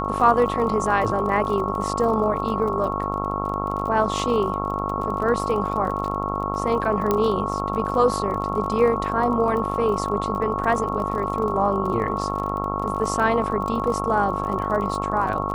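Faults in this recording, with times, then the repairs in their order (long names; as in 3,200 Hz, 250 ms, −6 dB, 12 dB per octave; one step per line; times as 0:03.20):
mains buzz 50 Hz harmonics 27 −28 dBFS
surface crackle 30 per second −29 dBFS
whistle 1,100 Hz −28 dBFS
0:07.11: click −8 dBFS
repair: click removal
hum removal 50 Hz, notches 27
notch filter 1,100 Hz, Q 30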